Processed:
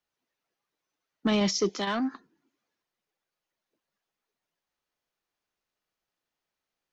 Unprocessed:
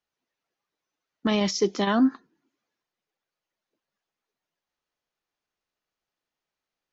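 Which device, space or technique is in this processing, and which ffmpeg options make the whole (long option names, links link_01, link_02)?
one-band saturation: -filter_complex "[0:a]acrossover=split=210|4300[link_01][link_02][link_03];[link_02]asoftclip=type=tanh:threshold=-20.5dB[link_04];[link_01][link_04][link_03]amix=inputs=3:normalize=0,asettb=1/sr,asplit=3[link_05][link_06][link_07];[link_05]atrim=end=1.694[link_08];[link_06]atrim=start=1.69:end=2.14,asetpts=PTS-STARTPTS,afade=type=in:duration=0.004:curve=qsin,afade=type=out:start_time=0.446:duration=0.004:curve=qsin,lowshelf=frequency=470:gain=-9.5[link_09];[link_07]atrim=start=2.136[link_10];[link_08][link_09]acrossfade=duration=0.004:curve1=hsin:curve2=qsin[link_11];[link_11][link_10]acrossfade=duration=0.004:curve1=qsin:curve2=hsin"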